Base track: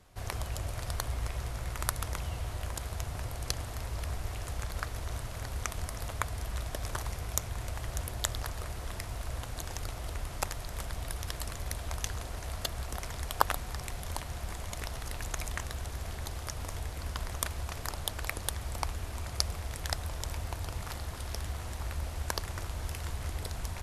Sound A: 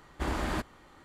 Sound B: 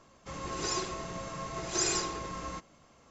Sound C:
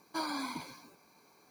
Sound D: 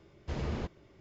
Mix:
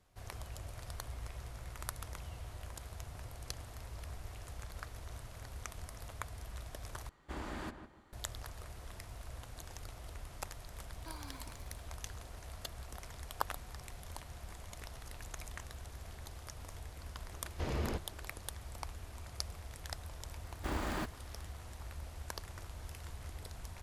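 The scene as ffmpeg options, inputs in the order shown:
-filter_complex "[1:a]asplit=2[s0][s1];[0:a]volume=0.316[s2];[s0]asplit=2[s3][s4];[s4]adelay=155,lowpass=f=1800:p=1,volume=0.376,asplit=2[s5][s6];[s6]adelay=155,lowpass=f=1800:p=1,volume=0.32,asplit=2[s7][s8];[s8]adelay=155,lowpass=f=1800:p=1,volume=0.32,asplit=2[s9][s10];[s10]adelay=155,lowpass=f=1800:p=1,volume=0.32[s11];[s3][s5][s7][s9][s11]amix=inputs=5:normalize=0[s12];[4:a]equalizer=f=160:w=1.5:g=-5[s13];[s1]acrusher=bits=5:mode=log:mix=0:aa=0.000001[s14];[s2]asplit=2[s15][s16];[s15]atrim=end=7.094[s17];[s12]atrim=end=1.04,asetpts=PTS-STARTPTS,volume=0.282[s18];[s16]atrim=start=8.126[s19];[3:a]atrim=end=1.5,asetpts=PTS-STARTPTS,volume=0.178,afade=t=in:d=0.004:c=hsin,afade=t=out:st=1.496:d=0.004:c=hsin,adelay=10910[s20];[s13]atrim=end=1,asetpts=PTS-STARTPTS,afade=t=in:d=0.004:c=hsin,afade=t=out:st=0.996:d=0.004:c=hsin,adelay=17310[s21];[s14]atrim=end=1.04,asetpts=PTS-STARTPTS,volume=0.531,afade=t=in:d=0.004:c=hsin,afade=t=out:st=1.036:d=0.004:c=hsin,adelay=20440[s22];[s17][s18]acrossfade=d=0.004:c1=hsin:c2=hsin[s23];[s23][s19]acrossfade=d=0.004:c1=hsin:c2=hsin[s24];[s24][s20][s21][s22]amix=inputs=4:normalize=0"

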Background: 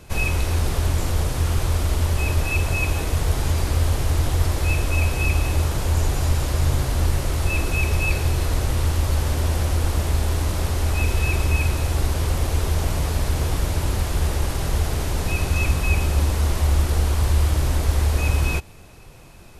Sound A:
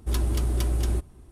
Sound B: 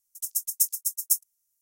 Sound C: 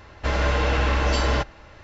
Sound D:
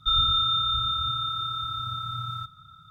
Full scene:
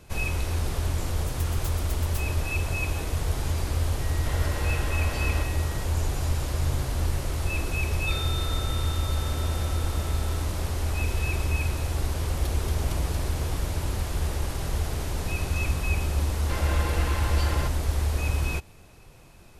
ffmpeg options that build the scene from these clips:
-filter_complex "[3:a]asplit=2[s0][s1];[0:a]volume=0.501[s2];[2:a]aeval=exprs='(mod(5.31*val(0)+1,2)-1)/5.31':c=same[s3];[s0]aeval=exprs='val(0)+0.0251*sin(2*PI*1900*n/s)':c=same[s4];[s1]aecho=1:1:5.8:0.65[s5];[s3]atrim=end=1.61,asetpts=PTS-STARTPTS,volume=0.168,afade=t=in:d=0.004:c=hsin,afade=t=out:st=1.606:d=0.004:c=hsin,adelay=1040[s6];[s4]atrim=end=1.83,asetpts=PTS-STARTPTS,volume=0.237,afade=t=in:d=0.004:c=hsin,afade=t=out:st=1.826:d=0.004:c=hsin,adelay=176841S[s7];[4:a]atrim=end=2.9,asetpts=PTS-STARTPTS,volume=0.211,afade=t=in:d=0.004:c=hsin,afade=t=out:st=2.896:d=0.004:c=hsin,adelay=8010[s8];[1:a]atrim=end=1.31,asetpts=PTS-STARTPTS,volume=0.398,afade=t=in:d=0.004:c=hsin,afade=t=out:st=1.306:d=0.004:c=hsin,adelay=12310[s9];[s5]atrim=end=1.83,asetpts=PTS-STARTPTS,volume=0.316,afade=t=in:d=0.004:c=hsin,afade=t=out:st=1.826:d=0.004:c=hsin,adelay=16250[s10];[s2][s6][s7][s8][s9][s10]amix=inputs=6:normalize=0"

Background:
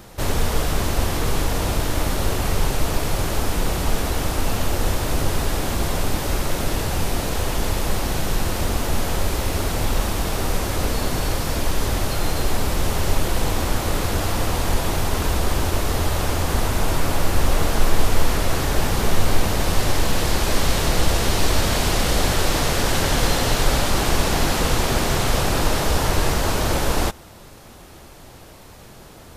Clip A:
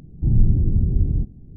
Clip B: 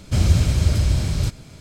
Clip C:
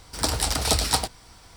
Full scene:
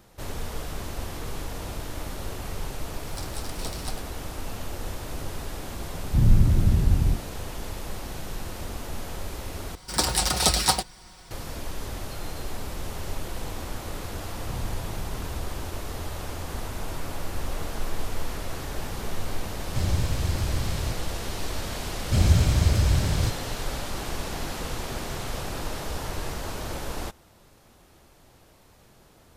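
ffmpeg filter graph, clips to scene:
-filter_complex "[3:a]asplit=2[s0][s1];[1:a]asplit=2[s2][s3];[2:a]asplit=2[s4][s5];[0:a]volume=0.237[s6];[s1]aecho=1:1:5.5:0.59[s7];[s6]asplit=2[s8][s9];[s8]atrim=end=9.754[s10];[s7]atrim=end=1.56[s11];[s9]atrim=start=11.306[s12];[s0]atrim=end=1.56,asetpts=PTS-STARTPTS,volume=0.168,afade=t=in:d=0.004:c=hsin,afade=t=out:st=1.556:d=0.004:c=hsin,adelay=2940[s13];[s2]atrim=end=1.56,asetpts=PTS-STARTPTS,volume=0.841,afade=t=in:d=0.004:c=hsin,afade=t=out:st=1.556:d=0.004:c=hsin,adelay=5910[s14];[s3]atrim=end=1.56,asetpts=PTS-STARTPTS,volume=0.133,afade=t=in:d=0.004:c=hsin,afade=t=out:st=1.556:d=0.004:c=hsin,adelay=14230[s15];[s4]atrim=end=1.6,asetpts=PTS-STARTPTS,volume=0.335,afade=t=in:d=0.004:c=hsin,afade=t=out:st=1.596:d=0.004:c=hsin,adelay=19630[s16];[s5]atrim=end=1.6,asetpts=PTS-STARTPTS,volume=0.708,afade=t=in:d=0.004:c=hsin,afade=t=out:st=1.596:d=0.004:c=hsin,adelay=22000[s17];[s10][s11]acrossfade=d=0.004:c1=hsin:c2=hsin[s18];[s18][s12]acrossfade=d=0.004:c1=hsin:c2=hsin[s19];[s19][s13][s14][s15][s16][s17]amix=inputs=6:normalize=0"

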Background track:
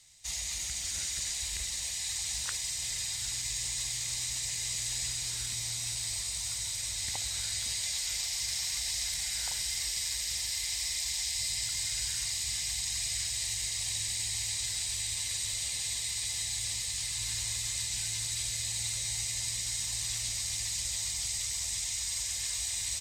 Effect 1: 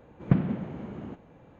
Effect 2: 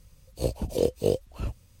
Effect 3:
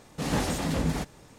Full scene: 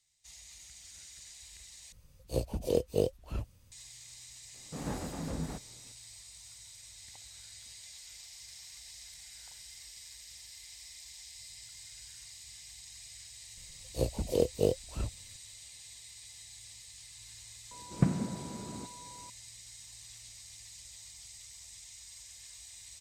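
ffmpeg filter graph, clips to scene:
-filter_complex "[2:a]asplit=2[s0][s1];[0:a]volume=0.15[s2];[3:a]equalizer=f=4500:t=o:w=2:g=-12[s3];[1:a]aeval=exprs='val(0)+0.00562*sin(2*PI*980*n/s)':c=same[s4];[s2]asplit=2[s5][s6];[s5]atrim=end=1.924[s7];[s0]atrim=end=1.8,asetpts=PTS-STARTPTS,volume=0.596[s8];[s6]atrim=start=3.716[s9];[s3]atrim=end=1.38,asetpts=PTS-STARTPTS,volume=0.335,afade=t=in:d=0.004:c=hsin,afade=t=out:st=1.376:d=0.004:c=hsin,adelay=4540[s10];[s1]atrim=end=1.8,asetpts=PTS-STARTPTS,volume=0.668,afade=t=in:d=0.004:c=hsin,afade=t=out:st=1.796:d=0.004:c=hsin,adelay=13570[s11];[s4]atrim=end=1.59,asetpts=PTS-STARTPTS,volume=0.596,afade=t=in:d=0.004:c=hsin,afade=t=out:st=1.586:d=0.004:c=hsin,adelay=17710[s12];[s7][s8]acrossfade=d=0.004:c1=hsin:c2=hsin[s13];[s13][s9]acrossfade=d=0.004:c1=hsin:c2=hsin[s14];[s14][s10][s11][s12]amix=inputs=4:normalize=0"

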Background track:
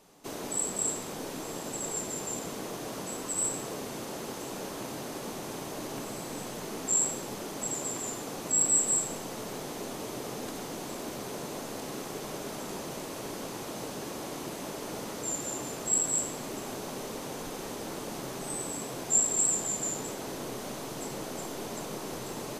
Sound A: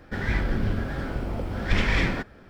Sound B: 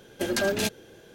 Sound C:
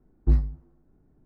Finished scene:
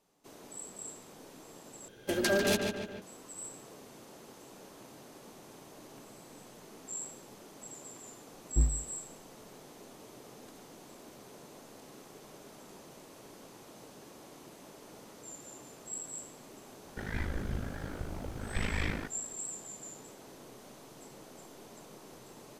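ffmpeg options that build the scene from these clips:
-filter_complex "[0:a]volume=0.2[s0];[2:a]asplit=2[s1][s2];[s2]adelay=146,lowpass=f=3900:p=1,volume=0.631,asplit=2[s3][s4];[s4]adelay=146,lowpass=f=3900:p=1,volume=0.52,asplit=2[s5][s6];[s6]adelay=146,lowpass=f=3900:p=1,volume=0.52,asplit=2[s7][s8];[s8]adelay=146,lowpass=f=3900:p=1,volume=0.52,asplit=2[s9][s10];[s10]adelay=146,lowpass=f=3900:p=1,volume=0.52,asplit=2[s11][s12];[s12]adelay=146,lowpass=f=3900:p=1,volume=0.52,asplit=2[s13][s14];[s14]adelay=146,lowpass=f=3900:p=1,volume=0.52[s15];[s1][s3][s5][s7][s9][s11][s13][s15]amix=inputs=8:normalize=0[s16];[1:a]aeval=exprs='val(0)*sin(2*PI*26*n/s)':c=same[s17];[s0]asplit=2[s18][s19];[s18]atrim=end=1.884[s20];[s16]atrim=end=1.14,asetpts=PTS-STARTPTS,volume=0.668[s21];[s19]atrim=start=3.016[s22];[3:a]atrim=end=1.25,asetpts=PTS-STARTPTS,volume=0.447,afade=t=in:d=0.004:c=hsin,afade=t=out:st=1.246:d=0.004:c=hsin,adelay=8290[s23];[s17]atrim=end=2.49,asetpts=PTS-STARTPTS,volume=0.422,afade=t=in:d=0.004:c=hsin,afade=t=out:st=2.486:d=0.004:c=hsin,adelay=16850[s24];[s20][s21]acrossfade=d=0.004:c1=hsin:c2=hsin[s25];[s25][s22]acrossfade=d=0.004:c1=hsin:c2=hsin[s26];[s26][s23][s24]amix=inputs=3:normalize=0"

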